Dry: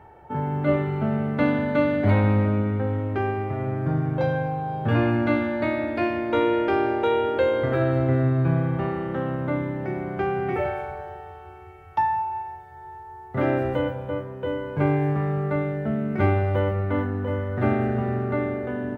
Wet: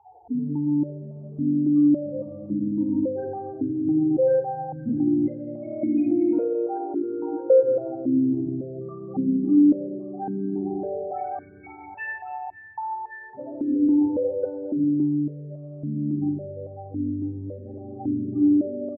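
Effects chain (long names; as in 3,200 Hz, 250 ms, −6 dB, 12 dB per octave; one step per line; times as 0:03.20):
echo with a time of its own for lows and highs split 690 Hz, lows 102 ms, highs 562 ms, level −5 dB
soft clipping −17.5 dBFS, distortion −14 dB
spectral peaks only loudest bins 8
tilt shelving filter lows +5.5 dB, about 1,100 Hz, from 0:11.33 lows −5 dB, from 0:13.67 lows +4 dB
downward compressor 2 to 1, threshold −23 dBFS, peak gain reduction 5 dB
double-tracking delay 40 ms −11 dB
rectangular room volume 3,600 cubic metres, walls mixed, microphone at 2 metres
dynamic equaliser 610 Hz, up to −6 dB, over −35 dBFS, Q 1.2
automatic gain control gain up to 4 dB
boost into a limiter +13 dB
formant filter that steps through the vowels 3.6 Hz
level −5.5 dB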